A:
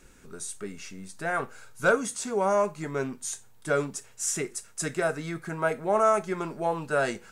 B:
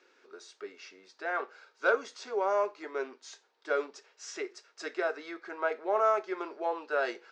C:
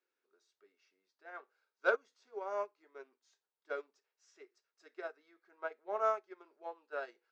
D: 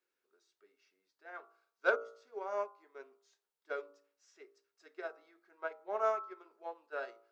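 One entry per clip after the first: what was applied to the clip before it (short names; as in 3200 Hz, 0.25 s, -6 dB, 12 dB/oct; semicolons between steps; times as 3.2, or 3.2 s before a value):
elliptic band-pass 360–5000 Hz, stop band 40 dB; gain -3.5 dB
upward expander 2.5:1, over -37 dBFS; gain -2.5 dB
de-hum 57.22 Hz, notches 25; gain +1 dB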